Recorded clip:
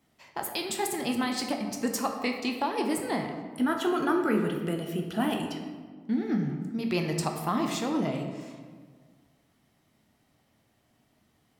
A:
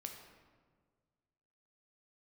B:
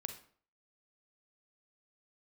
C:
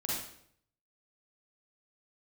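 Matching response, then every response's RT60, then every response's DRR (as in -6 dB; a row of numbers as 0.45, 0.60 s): A; 1.6, 0.50, 0.65 s; 3.0, 7.0, -6.0 dB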